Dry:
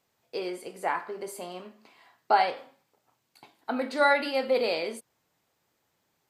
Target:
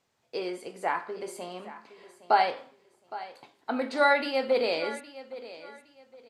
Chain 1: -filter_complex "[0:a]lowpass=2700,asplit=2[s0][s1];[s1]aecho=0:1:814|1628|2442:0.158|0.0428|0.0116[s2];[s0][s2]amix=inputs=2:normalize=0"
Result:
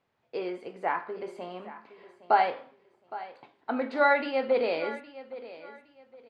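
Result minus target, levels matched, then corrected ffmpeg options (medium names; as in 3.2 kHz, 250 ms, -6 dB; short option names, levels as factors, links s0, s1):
8 kHz band -18.0 dB
-filter_complex "[0:a]lowpass=9100,asplit=2[s0][s1];[s1]aecho=0:1:814|1628|2442:0.158|0.0428|0.0116[s2];[s0][s2]amix=inputs=2:normalize=0"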